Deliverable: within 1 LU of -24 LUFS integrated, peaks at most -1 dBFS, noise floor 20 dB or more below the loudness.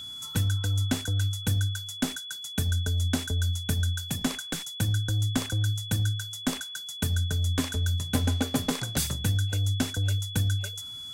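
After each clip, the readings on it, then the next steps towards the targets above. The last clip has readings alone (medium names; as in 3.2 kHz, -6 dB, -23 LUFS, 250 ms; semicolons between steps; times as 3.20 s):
steady tone 3.4 kHz; tone level -37 dBFS; loudness -28.5 LUFS; peak level -12.0 dBFS; loudness target -24.0 LUFS
-> band-stop 3.4 kHz, Q 30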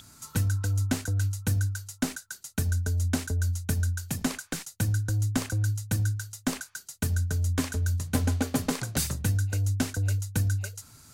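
steady tone not found; loudness -29.0 LUFS; peak level -11.5 dBFS; loudness target -24.0 LUFS
-> trim +5 dB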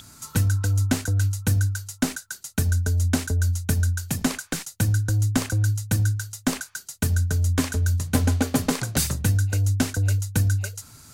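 loudness -24.0 LUFS; peak level -6.5 dBFS; noise floor -51 dBFS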